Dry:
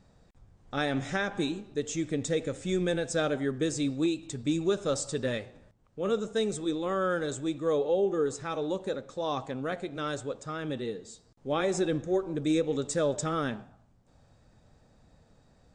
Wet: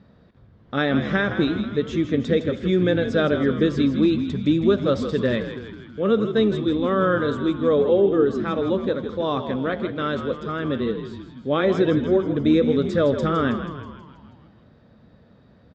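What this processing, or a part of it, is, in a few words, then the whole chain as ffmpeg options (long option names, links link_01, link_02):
frequency-shifting delay pedal into a guitar cabinet: -filter_complex "[0:a]asplit=8[link_01][link_02][link_03][link_04][link_05][link_06][link_07][link_08];[link_02]adelay=161,afreqshift=-70,volume=-9.5dB[link_09];[link_03]adelay=322,afreqshift=-140,volume=-14.1dB[link_10];[link_04]adelay=483,afreqshift=-210,volume=-18.7dB[link_11];[link_05]adelay=644,afreqshift=-280,volume=-23.2dB[link_12];[link_06]adelay=805,afreqshift=-350,volume=-27.8dB[link_13];[link_07]adelay=966,afreqshift=-420,volume=-32.4dB[link_14];[link_08]adelay=1127,afreqshift=-490,volume=-37dB[link_15];[link_01][link_09][link_10][link_11][link_12][link_13][link_14][link_15]amix=inputs=8:normalize=0,highpass=77,equalizer=frequency=220:width_type=q:width=4:gain=5,equalizer=frequency=800:width_type=q:width=4:gain=-7,equalizer=frequency=2500:width_type=q:width=4:gain=-5,lowpass=frequency=3700:width=0.5412,lowpass=frequency=3700:width=1.3066,volume=8.5dB"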